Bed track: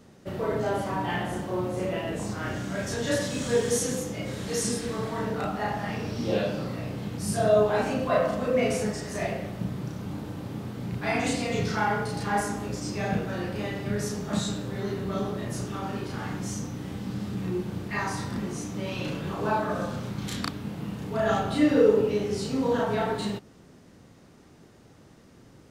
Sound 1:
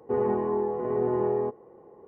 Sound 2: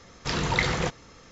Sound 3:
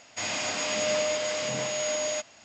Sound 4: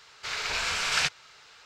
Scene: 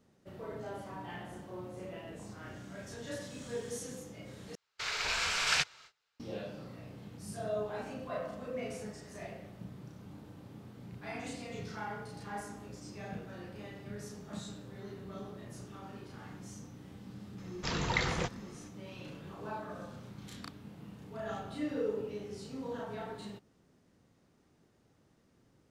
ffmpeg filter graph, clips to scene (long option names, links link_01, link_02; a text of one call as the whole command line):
ffmpeg -i bed.wav -i cue0.wav -i cue1.wav -i cue2.wav -i cue3.wav -filter_complex "[0:a]volume=-15dB[link_01];[4:a]agate=range=-25dB:threshold=-42dB:ratio=16:release=430:detection=peak[link_02];[link_01]asplit=2[link_03][link_04];[link_03]atrim=end=4.554[link_05];[link_02]atrim=end=1.65,asetpts=PTS-STARTPTS,volume=-3.5dB[link_06];[link_04]atrim=start=6.196[link_07];[2:a]atrim=end=1.31,asetpts=PTS-STARTPTS,volume=-7dB,afade=type=in:duration=0.004:curve=hsin,afade=type=out:start_time=1.306:duration=0.004:curve=hsin,adelay=17380[link_08];[link_05][link_06]acrossfade=duration=0.004:curve1=hsin:curve2=hsin[link_09];[link_09][link_07]acrossfade=duration=0.004:curve1=hsin:curve2=hsin[link_10];[link_10][link_08]amix=inputs=2:normalize=0" out.wav